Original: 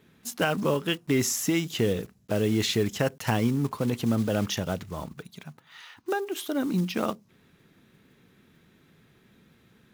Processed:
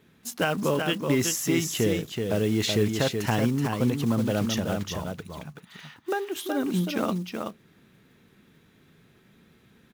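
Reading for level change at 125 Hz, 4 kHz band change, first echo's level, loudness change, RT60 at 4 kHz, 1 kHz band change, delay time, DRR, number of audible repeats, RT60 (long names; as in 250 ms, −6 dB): +1.5 dB, +1.0 dB, −5.0 dB, +1.0 dB, no reverb audible, +1.0 dB, 377 ms, no reverb audible, 1, no reverb audible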